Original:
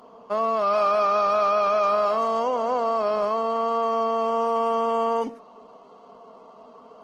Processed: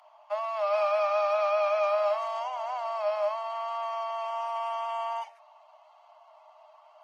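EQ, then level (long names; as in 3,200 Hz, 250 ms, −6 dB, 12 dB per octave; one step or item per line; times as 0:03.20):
Chebyshev high-pass with heavy ripple 590 Hz, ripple 9 dB
0.0 dB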